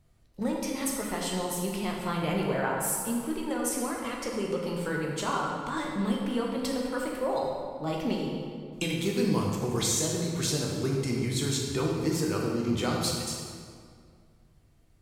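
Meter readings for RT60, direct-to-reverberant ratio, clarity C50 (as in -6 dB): 2.1 s, -2.0 dB, 0.5 dB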